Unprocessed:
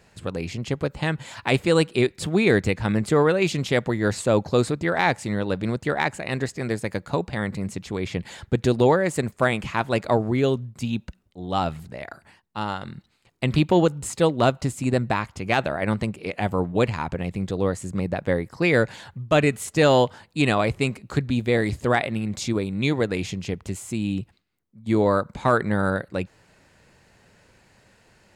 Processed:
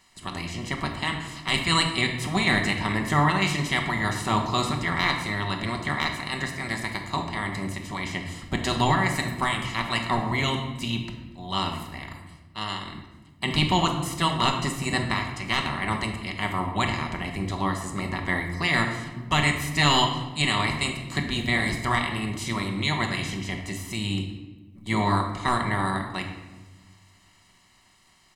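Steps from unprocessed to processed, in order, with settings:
ceiling on every frequency bin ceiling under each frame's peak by 19 dB
notch filter 820 Hz, Q 12
comb filter 1 ms, depth 70%
rectangular room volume 720 cubic metres, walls mixed, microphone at 1.1 metres
level −6 dB

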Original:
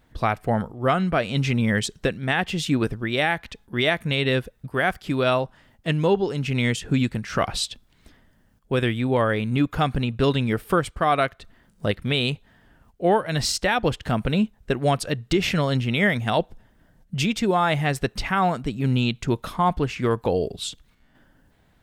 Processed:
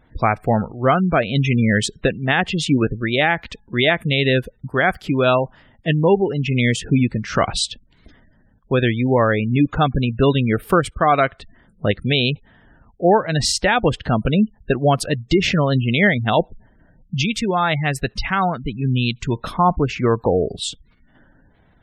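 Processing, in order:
0:17.21–0:19.36: parametric band 400 Hz −5 dB 2.8 octaves
gate on every frequency bin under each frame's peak −25 dB strong
level +5 dB

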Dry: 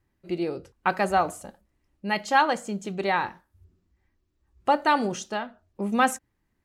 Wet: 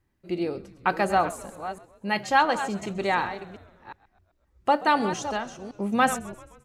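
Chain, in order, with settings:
delay that plays each chunk backwards 357 ms, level −11.5 dB
echo with shifted repeats 130 ms, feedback 57%, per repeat −74 Hz, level −19 dB

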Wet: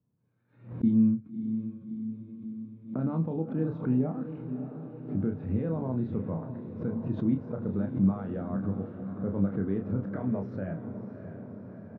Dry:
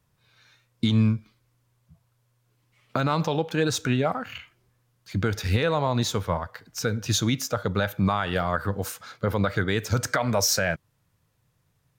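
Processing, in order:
resonant band-pass 230 Hz, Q 1.7
high-frequency loss of the air 490 metres
double-tracking delay 31 ms −5.5 dB
feedback delay with all-pass diffusion 619 ms, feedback 65%, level −9.5 dB
background raised ahead of every attack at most 140 dB per second

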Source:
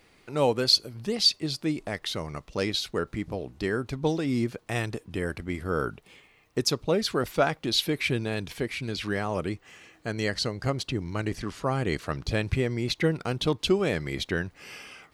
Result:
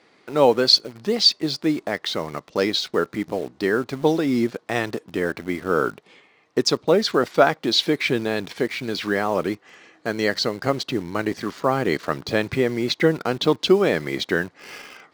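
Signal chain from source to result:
band-pass filter 220–5,100 Hz
parametric band 2,700 Hz −5.5 dB 0.56 octaves
in parallel at −7 dB: bit reduction 7 bits
on the sum: level +5 dB

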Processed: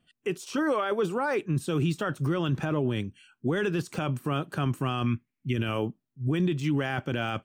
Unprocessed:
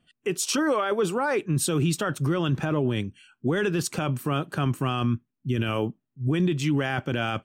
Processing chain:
de-essing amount 90%
0:05.06–0:05.53: parametric band 2,200 Hz +15 dB 0.62 octaves
level −2.5 dB

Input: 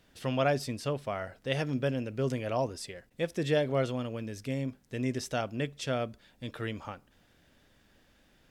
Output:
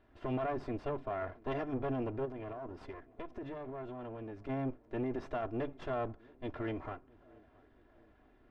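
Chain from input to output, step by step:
lower of the sound and its delayed copy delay 2.9 ms
low-pass filter 1,400 Hz 12 dB per octave
brickwall limiter −30.5 dBFS, peak gain reduction 11.5 dB
0:02.25–0:04.49: downward compressor, threshold −43 dBFS, peak gain reduction 9 dB
tape delay 670 ms, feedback 65%, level −22 dB, low-pass 1,100 Hz
level +2 dB

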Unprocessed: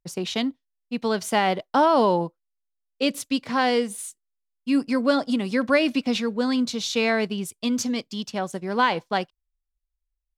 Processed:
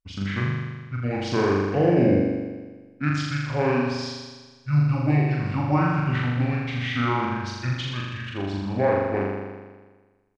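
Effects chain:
pitch shifter −11 semitones
flutter between parallel walls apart 7 metres, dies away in 1.4 s
level −4 dB

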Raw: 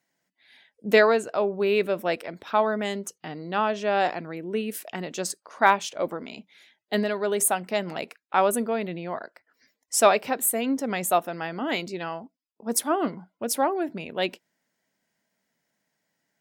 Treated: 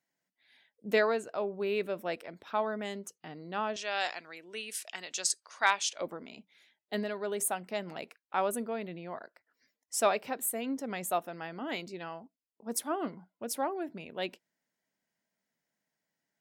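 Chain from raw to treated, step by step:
0:03.76–0:06.01: meter weighting curve ITU-R 468
level −9 dB

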